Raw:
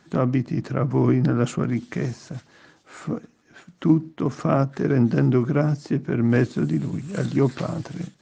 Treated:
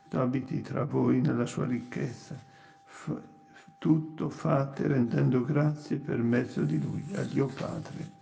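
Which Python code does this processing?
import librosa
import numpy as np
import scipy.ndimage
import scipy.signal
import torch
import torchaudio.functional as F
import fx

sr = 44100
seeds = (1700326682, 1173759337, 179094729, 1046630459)

p1 = x + 10.0 ** (-51.0 / 20.0) * np.sin(2.0 * np.pi * 790.0 * np.arange(len(x)) / sr)
p2 = p1 + fx.room_early_taps(p1, sr, ms=(20, 47), db=(-6.0, -17.5), dry=0)
p3 = fx.rev_spring(p2, sr, rt60_s=1.2, pass_ms=(57,), chirp_ms=65, drr_db=16.5)
p4 = fx.end_taper(p3, sr, db_per_s=180.0)
y = p4 * 10.0 ** (-7.0 / 20.0)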